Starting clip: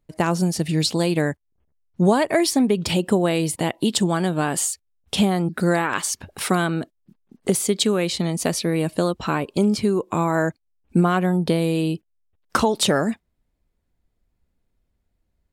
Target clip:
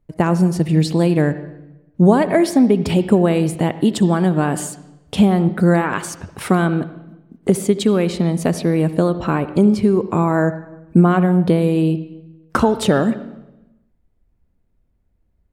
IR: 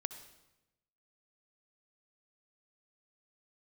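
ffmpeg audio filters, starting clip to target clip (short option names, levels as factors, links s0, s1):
-filter_complex "[0:a]asplit=2[s0][s1];[1:a]atrim=start_sample=2205,lowpass=2900,lowshelf=f=490:g=8[s2];[s1][s2]afir=irnorm=-1:irlink=0,volume=1.33[s3];[s0][s3]amix=inputs=2:normalize=0,volume=0.596"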